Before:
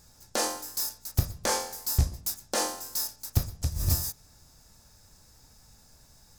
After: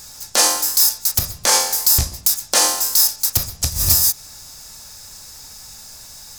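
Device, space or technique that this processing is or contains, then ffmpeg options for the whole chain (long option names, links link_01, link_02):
mastering chain: -af "equalizer=frequency=1600:width_type=o:width=0.56:gain=-2.5,acompressor=threshold=-34dB:ratio=1.5,tiltshelf=frequency=800:gain=-7,alimiter=level_in=15.5dB:limit=-1dB:release=50:level=0:latency=1,volume=-1dB"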